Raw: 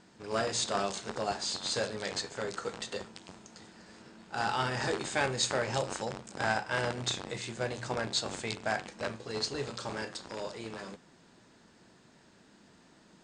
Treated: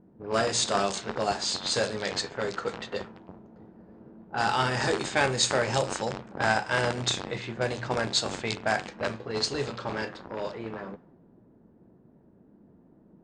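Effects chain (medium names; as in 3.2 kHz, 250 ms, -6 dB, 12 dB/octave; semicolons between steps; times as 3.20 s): level-controlled noise filter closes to 400 Hz, open at -29.5 dBFS; trim +5.5 dB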